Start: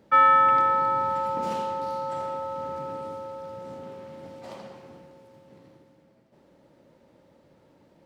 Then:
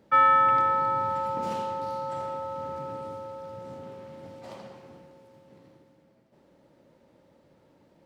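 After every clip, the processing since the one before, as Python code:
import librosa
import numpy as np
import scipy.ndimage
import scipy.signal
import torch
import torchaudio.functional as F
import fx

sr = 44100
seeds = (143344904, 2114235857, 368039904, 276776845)

y = fx.dynamic_eq(x, sr, hz=110.0, q=2.2, threshold_db=-57.0, ratio=4.0, max_db=6)
y = y * 10.0 ** (-2.0 / 20.0)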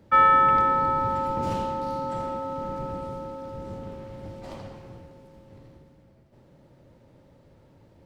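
y = fx.octave_divider(x, sr, octaves=1, level_db=4.0)
y = y * 10.0 ** (2.0 / 20.0)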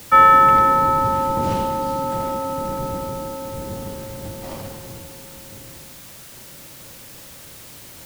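y = fx.quant_dither(x, sr, seeds[0], bits=8, dither='triangular')
y = y * 10.0 ** (6.5 / 20.0)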